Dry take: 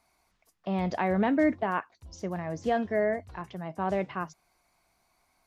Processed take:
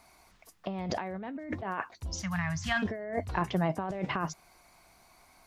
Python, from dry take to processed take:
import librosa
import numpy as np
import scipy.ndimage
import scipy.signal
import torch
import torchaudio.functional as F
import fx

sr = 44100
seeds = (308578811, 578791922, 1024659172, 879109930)

y = fx.cheby1_bandstop(x, sr, low_hz=120.0, high_hz=1400.0, order=2, at=(2.21, 2.82), fade=0.02)
y = fx.over_compress(y, sr, threshold_db=-37.0, ratio=-1.0)
y = F.gain(torch.from_numpy(y), 3.5).numpy()